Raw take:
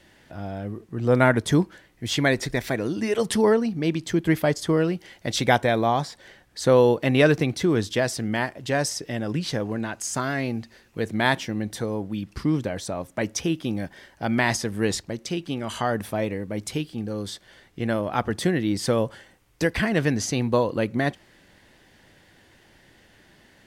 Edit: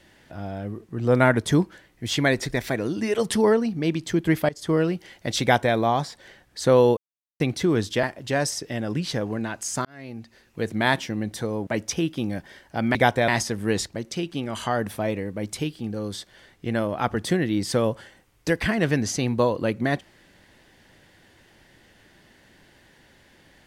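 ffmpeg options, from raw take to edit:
-filter_complex "[0:a]asplit=9[s0][s1][s2][s3][s4][s5][s6][s7][s8];[s0]atrim=end=4.49,asetpts=PTS-STARTPTS,afade=t=out:st=4.486:d=0.004:c=hsin:silence=0.0794328[s9];[s1]atrim=start=4.49:end=6.97,asetpts=PTS-STARTPTS,afade=t=in:d=0.25:silence=0.0794328,afade=t=out:st=2.476:d=0.004:c=hsin[s10];[s2]atrim=start=6.97:end=7.4,asetpts=PTS-STARTPTS,volume=0[s11];[s3]atrim=start=7.4:end=8.032,asetpts=PTS-STARTPTS,afade=t=in:d=0.004:c=hsin[s12];[s4]atrim=start=8.418:end=10.24,asetpts=PTS-STARTPTS,afade=t=out:st=1.818:d=0.004:c=hsin[s13];[s5]atrim=start=10.24:end=12.062,asetpts=PTS-STARTPTS,afade=t=in:d=0.77[s14];[s6]atrim=start=13.138:end=14.422[s15];[s7]atrim=start=5.418:end=5.752[s16];[s8]atrim=start=14.418[s17];[s9][s10][s11][s12]concat=n=4:v=0:a=1[s18];[s13][s14]concat=n=2:v=0:a=1[s19];[s18][s19]acrossfade=d=0.004:c1=hsin:c2=hsin[s20];[s20][s15]acrossfade=d=0.004:c1=hsin:c2=hsin[s21];[s21][s16]acrossfade=d=0.004:c1=hsin:c2=hsin[s22];[s22][s17]acrossfade=d=0.004:c1=hsin:c2=hsin"

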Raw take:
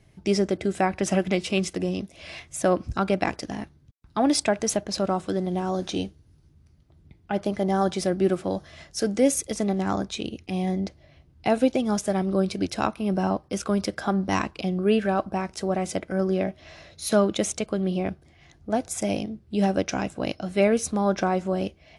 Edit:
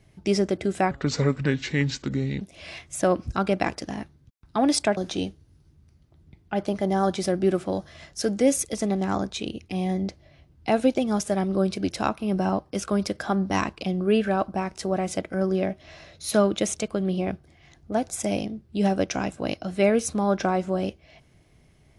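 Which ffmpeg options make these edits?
-filter_complex "[0:a]asplit=4[s0][s1][s2][s3];[s0]atrim=end=0.914[s4];[s1]atrim=start=0.91:end=2.02,asetpts=PTS-STARTPTS,asetrate=32634,aresample=44100[s5];[s2]atrim=start=2.016:end=4.582[s6];[s3]atrim=start=5.748[s7];[s4][s5]acrossfade=d=0.004:c1=hsin:c2=hsin[s8];[s8][s6]acrossfade=d=0.004:c1=hsin:c2=hsin[s9];[s9][s7]acrossfade=d=0.004:c1=hsin:c2=hsin"

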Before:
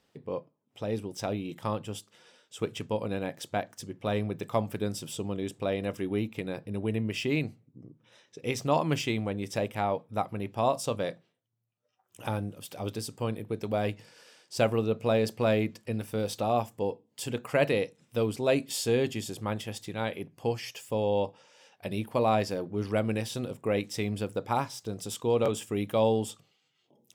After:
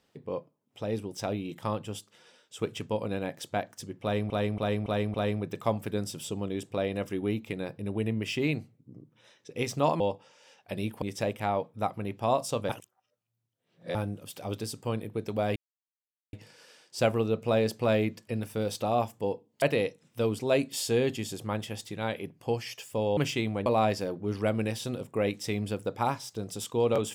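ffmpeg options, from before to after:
-filter_complex "[0:a]asplit=13[s0][s1][s2][s3][s4][s5][s6][s7][s8][s9][s10][s11][s12];[s0]atrim=end=4.302[s13];[s1]atrim=start=4.018:end=4.302[s14];[s2]atrim=start=4.018:end=4.302[s15];[s3]atrim=start=4.018:end=4.302[s16];[s4]atrim=start=4.018:end=8.882[s17];[s5]atrim=start=21.138:end=22.162[s18];[s6]atrim=start=9.368:end=11.042[s19];[s7]atrim=start=11.038:end=12.302,asetpts=PTS-STARTPTS,areverse[s20];[s8]atrim=start=12.298:end=13.91,asetpts=PTS-STARTPTS,afade=t=out:st=1.608:d=0.004:c=hsin,apad=pad_dur=0.77[s21];[s9]atrim=start=13.91:end=17.202,asetpts=PTS-STARTPTS,afade=t=in:d=0.004:c=hsin[s22];[s10]atrim=start=17.588:end=21.142[s23];[s11]atrim=start=8.878:end=9.372[s24];[s12]atrim=start=22.158[s25];[s13][s14]acrossfade=d=0.004:c1=hsin:c2=hsin[s26];[s26][s15]acrossfade=d=0.004:c1=hsin:c2=hsin[s27];[s27][s16]acrossfade=d=0.004:c1=hsin:c2=hsin[s28];[s28][s17]acrossfade=d=0.004:c1=hsin:c2=hsin[s29];[s29][s18]acrossfade=d=0.004:c1=hsin:c2=hsin[s30];[s30][s19]acrossfade=d=0.004:c1=hsin:c2=hsin[s31];[s31][s20]acrossfade=d=0.004:c1=hsin:c2=hsin[s32];[s21][s22]concat=n=2:v=0:a=1[s33];[s32][s33]acrossfade=d=0.004:c1=hsin:c2=hsin[s34];[s34][s23]acrossfade=d=0.004:c1=hsin:c2=hsin[s35];[s35][s24]acrossfade=d=0.004:c1=hsin:c2=hsin[s36];[s36][s25]acrossfade=d=0.004:c1=hsin:c2=hsin"

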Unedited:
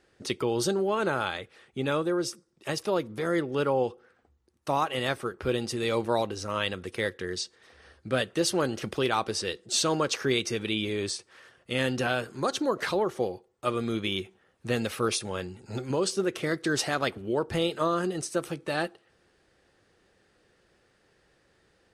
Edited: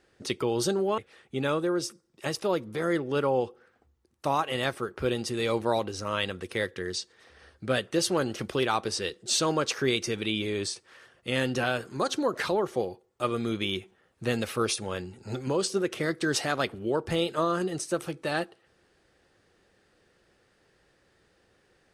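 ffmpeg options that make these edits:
-filter_complex "[0:a]asplit=2[s0][s1];[s0]atrim=end=0.982[s2];[s1]atrim=start=1.408[s3];[s2][s3]acrossfade=d=0.004:c1=hsin:c2=hsin"

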